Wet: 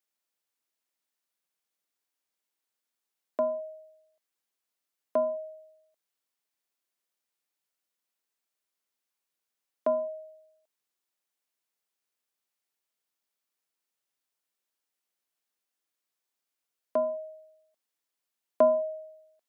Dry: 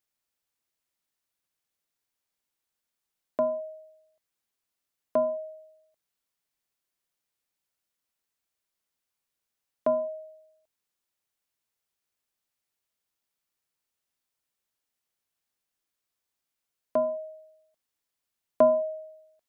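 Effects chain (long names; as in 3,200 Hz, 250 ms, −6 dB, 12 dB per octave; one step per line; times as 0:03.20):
high-pass filter 220 Hz
level −1.5 dB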